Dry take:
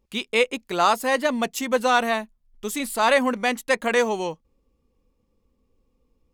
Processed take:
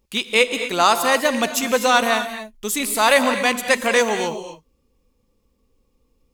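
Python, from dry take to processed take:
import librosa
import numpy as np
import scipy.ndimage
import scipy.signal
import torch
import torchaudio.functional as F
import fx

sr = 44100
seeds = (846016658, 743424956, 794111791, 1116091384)

y = fx.rattle_buzz(x, sr, strikes_db=-32.0, level_db=-21.0)
y = fx.high_shelf(y, sr, hz=2700.0, db=7.0)
y = fx.rev_gated(y, sr, seeds[0], gate_ms=280, shape='rising', drr_db=8.5)
y = y * 10.0 ** (2.0 / 20.0)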